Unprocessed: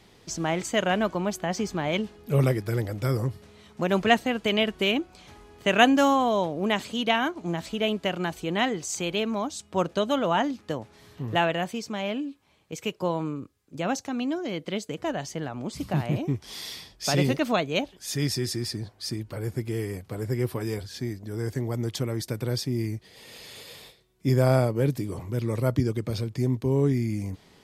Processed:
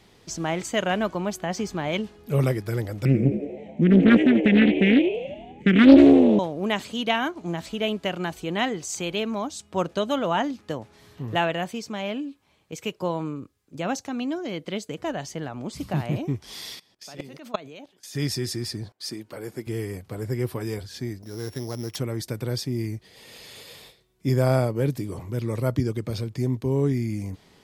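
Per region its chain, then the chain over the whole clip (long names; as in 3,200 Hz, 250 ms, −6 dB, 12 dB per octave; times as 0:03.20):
0:03.05–0:06.39: drawn EQ curve 110 Hz 0 dB, 160 Hz +13 dB, 310 Hz +11 dB, 830 Hz −29 dB, 1,300 Hz −20 dB, 2,200 Hz +6 dB, 4,700 Hz −22 dB, 6,900 Hz −12 dB, 11,000 Hz −23 dB + echo with shifted repeats 86 ms, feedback 58%, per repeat +77 Hz, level −8.5 dB + highs frequency-modulated by the lows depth 0.41 ms
0:16.75–0:18.15: high-pass filter 160 Hz + output level in coarse steps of 21 dB
0:18.92–0:19.67: high-pass filter 230 Hz + noise gate −60 dBFS, range −16 dB
0:21.22–0:21.96: samples sorted by size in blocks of 8 samples + low-shelf EQ 250 Hz −5.5 dB
whole clip: no processing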